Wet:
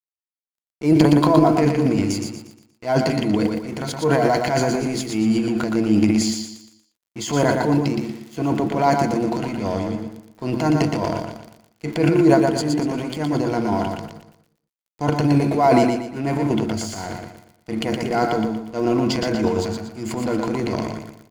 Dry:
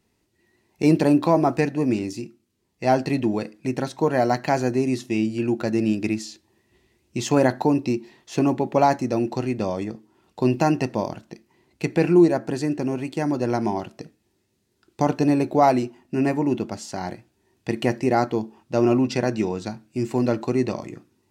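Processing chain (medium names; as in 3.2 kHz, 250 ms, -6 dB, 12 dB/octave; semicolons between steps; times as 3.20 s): rippled EQ curve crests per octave 1.8, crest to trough 10 dB; crackle 27 per s -40 dBFS; transient shaper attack -7 dB, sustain +10 dB; crossover distortion -41.5 dBFS; on a send: feedback delay 118 ms, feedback 37%, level -4.5 dB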